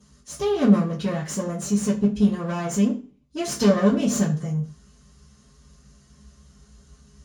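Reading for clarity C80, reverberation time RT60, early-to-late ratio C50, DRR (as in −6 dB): 15.5 dB, 0.40 s, 10.0 dB, −9.0 dB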